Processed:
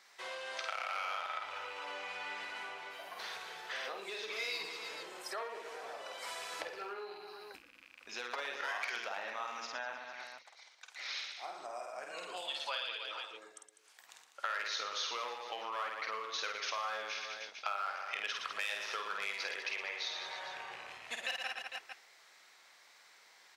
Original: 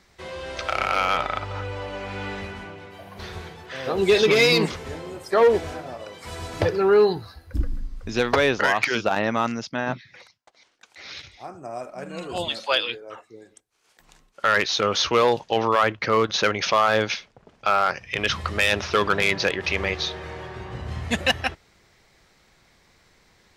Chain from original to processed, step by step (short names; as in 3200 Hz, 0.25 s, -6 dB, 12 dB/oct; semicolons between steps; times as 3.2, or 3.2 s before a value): rattling part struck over -31 dBFS, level -28 dBFS; reverse bouncing-ball echo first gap 50 ms, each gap 1.3×, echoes 5; compressor 5:1, threshold -33 dBFS, peak gain reduction 21 dB; HPF 800 Hz 12 dB/oct; gain -2.5 dB